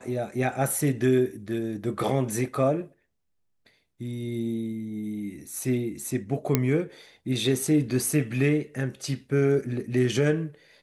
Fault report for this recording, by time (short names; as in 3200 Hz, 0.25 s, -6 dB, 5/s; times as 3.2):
6.55 pop -6 dBFS